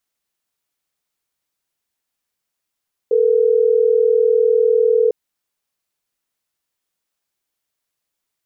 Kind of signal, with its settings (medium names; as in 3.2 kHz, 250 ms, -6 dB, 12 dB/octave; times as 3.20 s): call progress tone ringback tone, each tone -14 dBFS